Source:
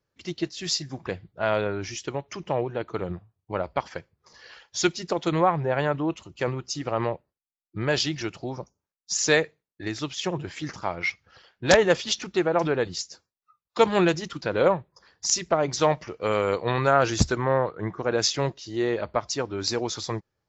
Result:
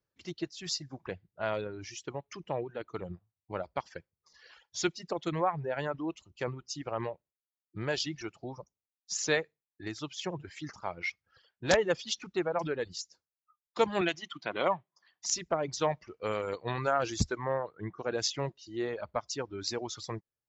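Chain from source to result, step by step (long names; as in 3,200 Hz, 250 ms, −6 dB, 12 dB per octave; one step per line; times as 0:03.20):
reverb reduction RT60 1 s
0:14.01–0:15.26: loudspeaker in its box 190–6,900 Hz, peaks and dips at 480 Hz −9 dB, 700 Hz +7 dB, 1,100 Hz +6 dB, 2,100 Hz +7 dB, 3,100 Hz +10 dB, 5,100 Hz −6 dB
level −7.5 dB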